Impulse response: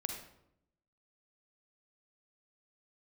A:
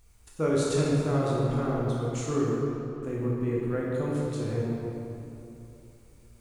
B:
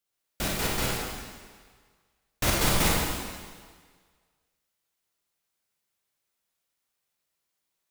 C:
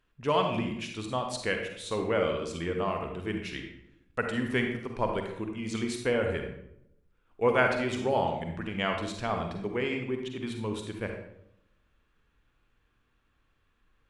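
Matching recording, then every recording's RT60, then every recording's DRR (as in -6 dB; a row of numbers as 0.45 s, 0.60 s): C; 3.0 s, 1.6 s, 0.80 s; -5.0 dB, -3.5 dB, 3.0 dB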